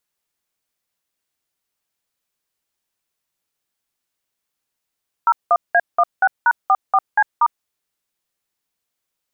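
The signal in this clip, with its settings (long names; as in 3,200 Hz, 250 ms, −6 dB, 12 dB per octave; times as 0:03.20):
touch tones "01A16#44C*", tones 52 ms, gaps 186 ms, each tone −13 dBFS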